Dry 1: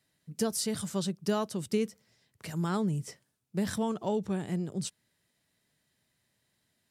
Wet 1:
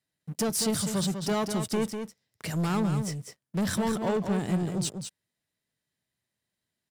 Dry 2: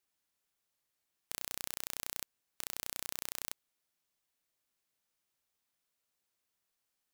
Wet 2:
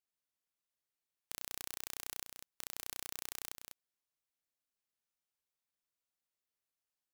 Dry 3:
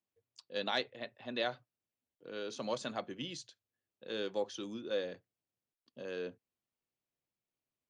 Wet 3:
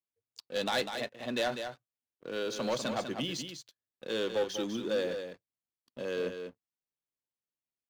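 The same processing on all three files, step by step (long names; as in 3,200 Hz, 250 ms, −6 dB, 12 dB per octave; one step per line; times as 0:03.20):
leveller curve on the samples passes 3
on a send: single-tap delay 198 ms −7.5 dB
on the sum: level −4 dB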